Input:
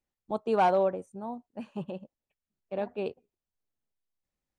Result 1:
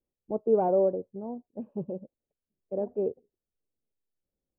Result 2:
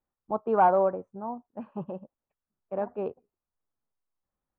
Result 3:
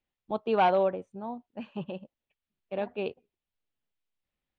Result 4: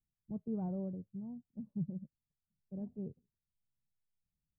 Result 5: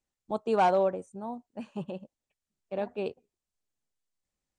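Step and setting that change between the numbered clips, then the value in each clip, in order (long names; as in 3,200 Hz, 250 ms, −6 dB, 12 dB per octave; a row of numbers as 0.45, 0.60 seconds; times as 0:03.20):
low-pass with resonance, frequency: 470, 1,200, 3,200, 150, 8,000 Hertz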